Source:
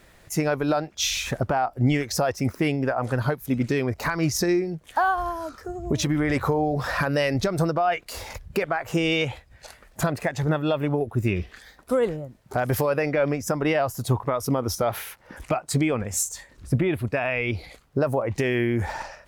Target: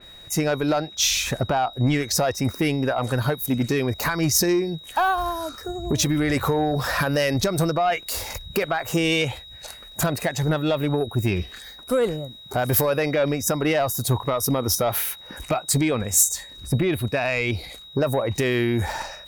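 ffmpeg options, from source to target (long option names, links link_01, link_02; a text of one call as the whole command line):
ffmpeg -i in.wav -af "asoftclip=type=tanh:threshold=-15.5dB,asetnsamples=nb_out_samples=441:pad=0,asendcmd='2.59 highshelf g 11.5',highshelf=frequency=12000:gain=2.5,aeval=exprs='val(0)+0.00562*sin(2*PI*3800*n/s)':channel_layout=same,adynamicequalizer=threshold=0.00794:dfrequency=3800:dqfactor=0.7:tfrequency=3800:tqfactor=0.7:attack=5:release=100:ratio=0.375:range=2:mode=boostabove:tftype=highshelf,volume=2.5dB" out.wav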